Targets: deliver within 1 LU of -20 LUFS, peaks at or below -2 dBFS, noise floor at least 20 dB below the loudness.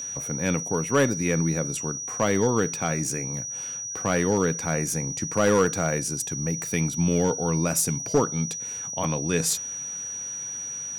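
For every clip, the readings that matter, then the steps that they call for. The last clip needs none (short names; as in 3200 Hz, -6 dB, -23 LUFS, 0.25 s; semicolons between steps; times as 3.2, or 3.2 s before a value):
clipped 0.3%; flat tops at -13.0 dBFS; steady tone 5800 Hz; tone level -31 dBFS; loudness -25.5 LUFS; peak -13.0 dBFS; loudness target -20.0 LUFS
-> clip repair -13 dBFS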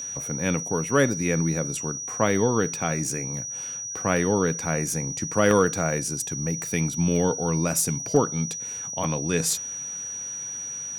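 clipped 0.0%; steady tone 5800 Hz; tone level -31 dBFS
-> notch 5800 Hz, Q 30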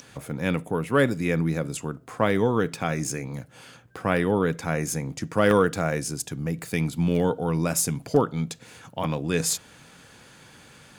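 steady tone none; loudness -25.5 LUFS; peak -3.5 dBFS; loudness target -20.0 LUFS
-> gain +5.5 dB; limiter -2 dBFS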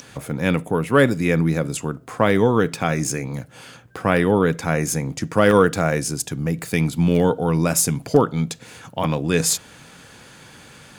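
loudness -20.0 LUFS; peak -2.0 dBFS; noise floor -46 dBFS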